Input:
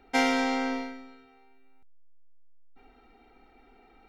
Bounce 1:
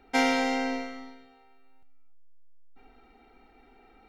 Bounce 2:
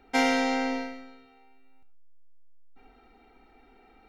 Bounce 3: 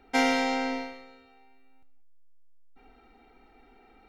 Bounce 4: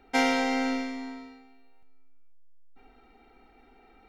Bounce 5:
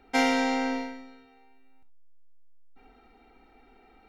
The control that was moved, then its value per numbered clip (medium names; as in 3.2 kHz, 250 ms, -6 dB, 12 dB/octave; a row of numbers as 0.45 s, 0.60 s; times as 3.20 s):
gated-style reverb, gate: 340 ms, 140 ms, 220 ms, 540 ms, 90 ms